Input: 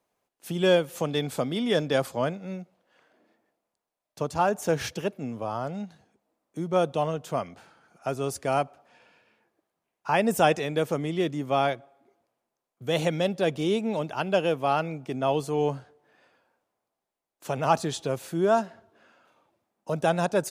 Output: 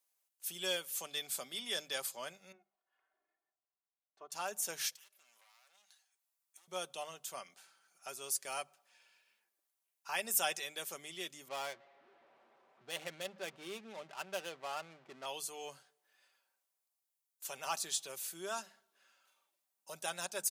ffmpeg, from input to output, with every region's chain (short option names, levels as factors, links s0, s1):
-filter_complex "[0:a]asettb=1/sr,asplit=3[s0][s1][s2];[s0]atrim=end=2.524[s3];[s1]atrim=start=2.52:end=4.32,asetpts=PTS-STARTPTS,afade=t=in:d=0.004:c=qsin,afade=t=out:st=1.796:d=0.004:c=qsin,lowpass=1100,lowshelf=f=450:g=-11,aecho=1:1:2.8:0.72,atrim=end_sample=79380[s4];[s2]atrim=start=4.316[s5];[s3][s4]acrossfade=d=0.004:c1=hsin:c2=qsin[s6];[s6][s5]acrossfade=d=0.004:c1=qsin:c2=hsin,asettb=1/sr,asplit=3[s7][s8][s9];[s7]atrim=end=4.954[s10];[s8]atrim=start=4.95:end=6.68,asetpts=PTS-STARTPTS,afade=t=in:d=0.004:c=qsin,afade=t=out:st=1.726:d=0.004:c=qsin,asoftclip=type=hard:threshold=0.0237,highpass=1000,acompressor=threshold=0.00224:ratio=6:attack=3.2:release=140:knee=1:detection=peak[s11];[s9]atrim=start=6.676[s12];[s10][s11]acrossfade=d=0.004:c1=hsin:c2=qsin[s13];[s13][s12]acrossfade=d=0.004:c1=qsin:c2=hsin,asettb=1/sr,asplit=3[s14][s15][s16];[s14]atrim=end=11.484[s17];[s15]atrim=start=11.48:end=15.26,asetpts=PTS-STARTPTS,afade=t=in:d=0.004:c=qsin,afade=t=out:st=3.776:d=0.004:c=qsin,aeval=exprs='val(0)+0.5*0.0126*sgn(val(0))':c=same,adynamicsmooth=sensitivity=5.5:basefreq=510,highshelf=f=3300:g=-10[s18];[s16]atrim=start=15.256[s19];[s17][s18]acrossfade=d=0.004:c1=hsin:c2=qsin[s20];[s20][s19]acrossfade=d=0.004:c1=qsin:c2=hsin,aderivative,bandreject=f=50:t=h:w=6,bandreject=f=100:t=h:w=6,bandreject=f=150:t=h:w=6,bandreject=f=200:t=h:w=6,aecho=1:1:5.2:0.38,volume=1.19"